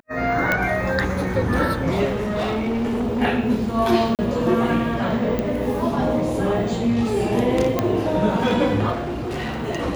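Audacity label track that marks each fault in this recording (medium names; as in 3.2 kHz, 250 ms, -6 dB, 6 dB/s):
0.520000	0.520000	pop -6 dBFS
2.040000	3.220000	clipped -19.5 dBFS
4.150000	4.190000	dropout 38 ms
5.390000	5.390000	pop -11 dBFS
7.790000	7.790000	pop -7 dBFS
8.920000	9.650000	clipped -23.5 dBFS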